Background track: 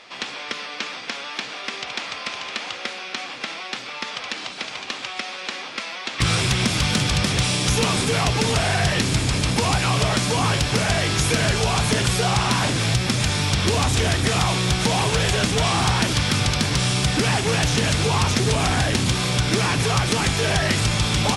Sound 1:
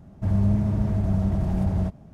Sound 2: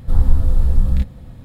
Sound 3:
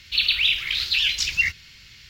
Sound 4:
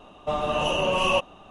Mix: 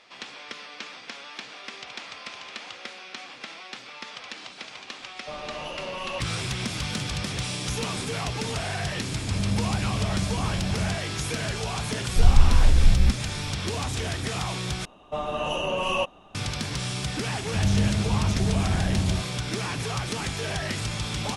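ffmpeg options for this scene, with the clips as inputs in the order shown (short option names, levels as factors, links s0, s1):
-filter_complex "[4:a]asplit=2[s0][s1];[1:a]asplit=2[s2][s3];[0:a]volume=0.335,asplit=2[s4][s5];[s4]atrim=end=14.854[s6];[s1]atrim=end=1.5,asetpts=PTS-STARTPTS,volume=0.668[s7];[s5]atrim=start=16.346[s8];[s0]atrim=end=1.5,asetpts=PTS-STARTPTS,volume=0.282,afade=t=in:d=0.004:c=hsin,afade=t=out:st=1.496:d=0.004:c=hsin,adelay=5000[s9];[s2]atrim=end=2.13,asetpts=PTS-STARTPTS,volume=0.531,afade=t=in:d=0.004:c=hsin,afade=t=out:st=2.126:d=0.004:c=hsin,adelay=9050[s10];[2:a]atrim=end=1.44,asetpts=PTS-STARTPTS,volume=0.708,afade=t=in:d=0.004:c=hsin,afade=t=out:st=1.436:d=0.004:c=hsin,adelay=12080[s11];[s3]atrim=end=2.13,asetpts=PTS-STARTPTS,volume=0.794,afade=t=in:d=0.004:c=hsin,afade=t=out:st=2.126:d=0.004:c=hsin,adelay=763812S[s12];[s6][s7]acrossfade=d=0.004:c1=hsin:c2=hsin[s13];[s13][s8]acrossfade=d=0.004:c1=hsin:c2=hsin[s14];[s14][s9][s10][s11][s12]amix=inputs=5:normalize=0"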